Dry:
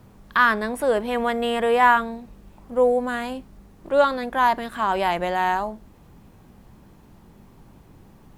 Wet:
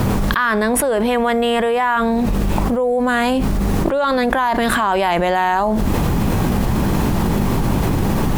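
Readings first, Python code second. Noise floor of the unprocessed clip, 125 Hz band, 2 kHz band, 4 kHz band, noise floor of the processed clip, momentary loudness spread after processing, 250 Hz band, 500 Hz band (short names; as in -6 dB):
-51 dBFS, +24.0 dB, +3.5 dB, +7.5 dB, -18 dBFS, 2 LU, +13.0 dB, +5.0 dB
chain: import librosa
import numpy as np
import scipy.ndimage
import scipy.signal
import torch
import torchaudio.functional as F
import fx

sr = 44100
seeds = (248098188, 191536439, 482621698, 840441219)

y = fx.env_flatten(x, sr, amount_pct=100)
y = y * librosa.db_to_amplitude(-4.0)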